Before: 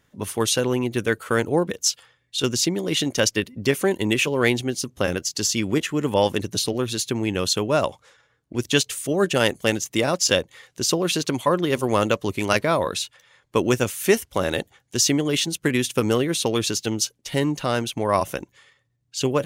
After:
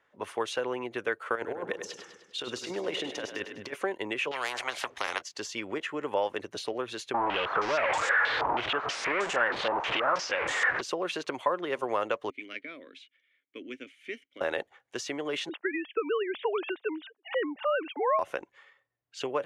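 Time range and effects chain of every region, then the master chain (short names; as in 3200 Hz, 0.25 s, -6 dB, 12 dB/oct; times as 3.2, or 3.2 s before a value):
1.35–3.74 negative-ratio compressor -24 dBFS, ratio -0.5 + split-band echo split 350 Hz, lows 0.148 s, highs 0.101 s, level -9 dB
4.31–5.22 LPF 3200 Hz 6 dB/oct + spectral compressor 10:1
7.14–10.81 delta modulation 64 kbps, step -14 dBFS + stepped low-pass 6.3 Hz 930–7400 Hz
12.3–14.41 vowel filter i + high shelf 6000 Hz +11 dB
15.49–18.19 sine-wave speech + three-band squash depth 40%
whole clip: LPF 8900 Hz 12 dB/oct; compressor, threshold -21 dBFS; three-band isolator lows -22 dB, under 420 Hz, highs -17 dB, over 2600 Hz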